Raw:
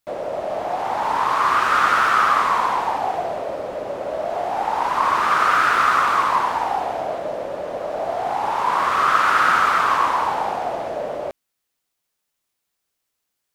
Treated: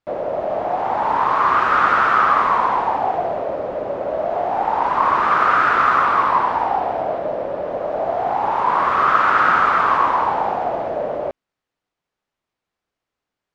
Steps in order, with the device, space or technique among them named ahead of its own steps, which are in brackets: through cloth (LPF 6800 Hz 12 dB/oct; high shelf 3100 Hz -16 dB); 6.04–7.69 notch 6600 Hz, Q 11; gain +4 dB

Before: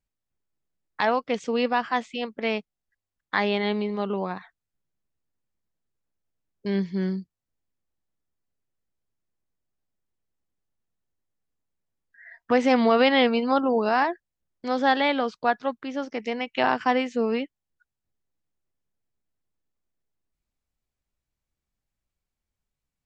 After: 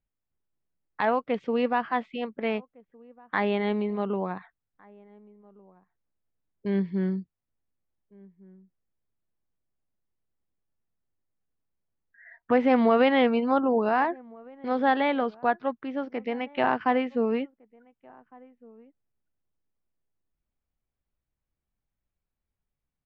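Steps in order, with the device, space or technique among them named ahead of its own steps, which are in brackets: shout across a valley (air absorption 400 m; outdoor echo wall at 250 m, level -25 dB)

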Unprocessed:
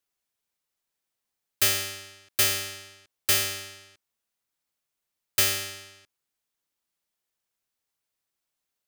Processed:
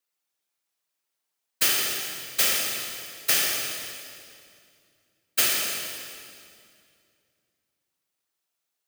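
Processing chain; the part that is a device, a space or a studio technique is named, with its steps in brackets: whispering ghost (whisperiser; HPF 340 Hz 6 dB/oct; reverb RT60 2.3 s, pre-delay 38 ms, DRR 1.5 dB)

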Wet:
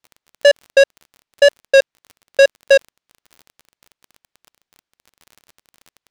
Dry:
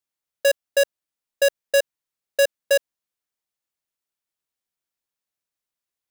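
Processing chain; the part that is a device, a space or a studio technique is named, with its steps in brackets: lo-fi chain (LPF 4800 Hz 12 dB/oct; wow and flutter; crackle 32/s -37 dBFS); gain +8 dB

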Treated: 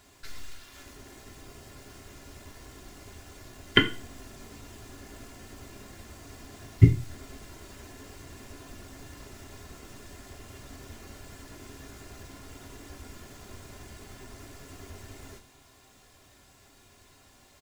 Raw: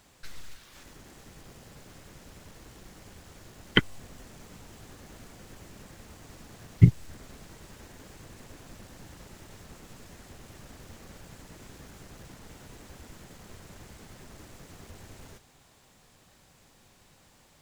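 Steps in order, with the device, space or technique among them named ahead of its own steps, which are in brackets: microphone above a desk (comb 2.9 ms, depth 51%; reverb RT60 0.35 s, pre-delay 3 ms, DRR 4 dB)

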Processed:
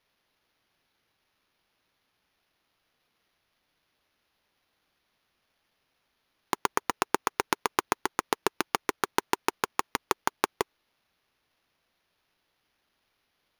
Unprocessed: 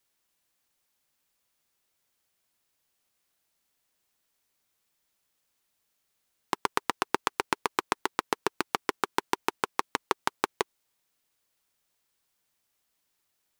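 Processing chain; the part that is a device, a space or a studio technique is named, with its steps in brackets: crushed at another speed (playback speed 0.8×; sample-and-hold 7×; playback speed 1.25×); gain +1 dB

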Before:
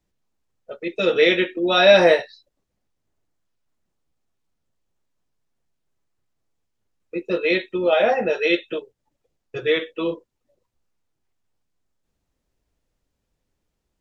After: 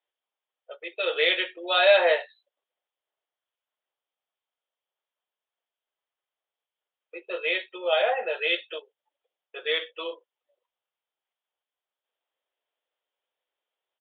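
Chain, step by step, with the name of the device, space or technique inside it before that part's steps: musical greeting card (downsampling 8000 Hz; HPF 520 Hz 24 dB/oct; bell 3200 Hz +7.5 dB 0.3 oct); gain -4.5 dB

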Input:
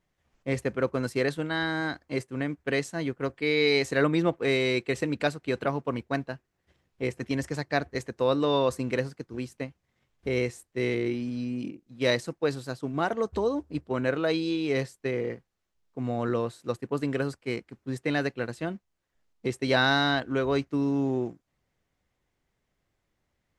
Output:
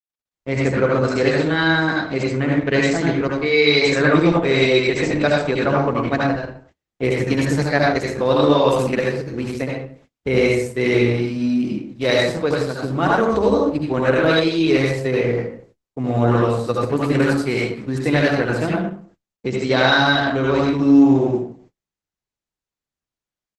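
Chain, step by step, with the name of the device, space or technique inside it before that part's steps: 17.08–17.75 high shelf 5000 Hz +6 dB; speakerphone in a meeting room (reverb RT60 0.50 s, pre-delay 67 ms, DRR -3.5 dB; AGC gain up to 10.5 dB; gate -46 dBFS, range -32 dB; gain -1 dB; Opus 12 kbps 48000 Hz)

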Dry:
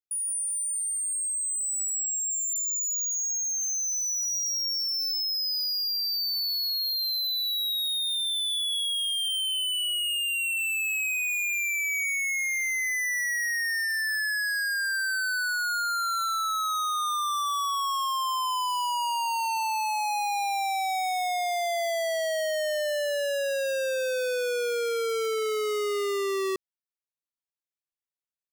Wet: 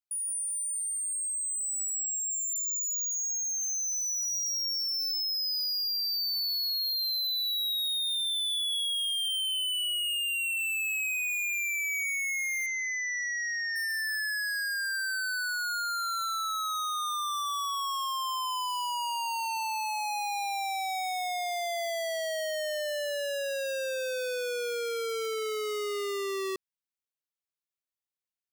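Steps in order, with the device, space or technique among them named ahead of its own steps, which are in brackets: presence and air boost (bell 3700 Hz +3 dB 1.8 oct; high shelf 12000 Hz +4 dB); 12.66–13.76 Chebyshev band-pass 1100–6900 Hz, order 5; gain -5 dB

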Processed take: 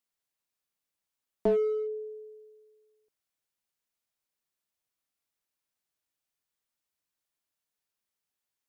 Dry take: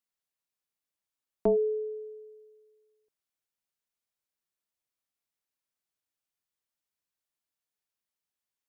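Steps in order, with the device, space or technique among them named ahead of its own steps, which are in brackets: parallel distortion (in parallel at -4.5 dB: hard clip -32.5 dBFS, distortion -5 dB); on the sum: gain -2 dB

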